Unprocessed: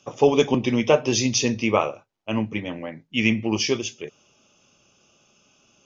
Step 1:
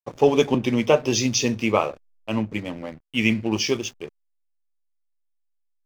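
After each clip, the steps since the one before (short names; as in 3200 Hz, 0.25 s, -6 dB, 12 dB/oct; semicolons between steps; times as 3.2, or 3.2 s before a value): backlash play -35 dBFS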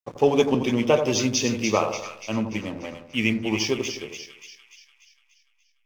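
split-band echo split 1400 Hz, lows 84 ms, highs 0.292 s, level -7.5 dB; gain -2 dB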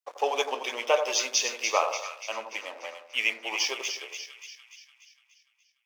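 HPF 590 Hz 24 dB/oct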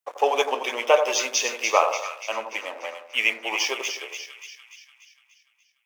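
bell 4700 Hz -6.5 dB 1 oct; gain +6 dB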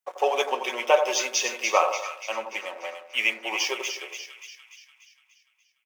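comb 5.4 ms, depth 47%; gain -2.5 dB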